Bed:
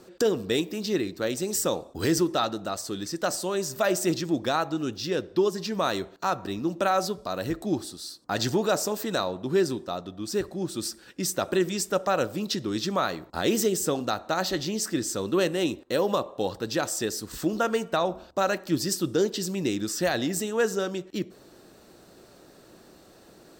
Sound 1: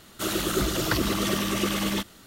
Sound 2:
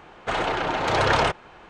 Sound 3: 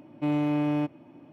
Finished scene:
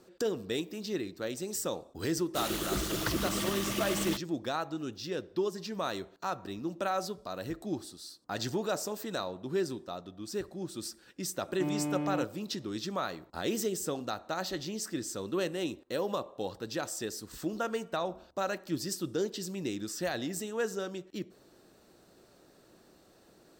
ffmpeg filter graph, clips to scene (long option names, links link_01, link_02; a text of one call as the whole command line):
ffmpeg -i bed.wav -i cue0.wav -i cue1.wav -i cue2.wav -filter_complex "[0:a]volume=-8dB[link_01];[1:a]acrusher=bits=4:mix=0:aa=0.5,atrim=end=2.26,asetpts=PTS-STARTPTS,volume=-7.5dB,afade=type=in:duration=0.004:curve=hsin,afade=type=out:start_time=2.256:duration=0.004:curve=hsin,adelay=2150[link_02];[3:a]atrim=end=1.32,asetpts=PTS-STARTPTS,volume=-7.5dB,afade=type=in:duration=0.004:curve=hsin,afade=type=out:start_time=1.316:duration=0.004:curve=hsin,adelay=501858S[link_03];[link_01][link_02][link_03]amix=inputs=3:normalize=0" out.wav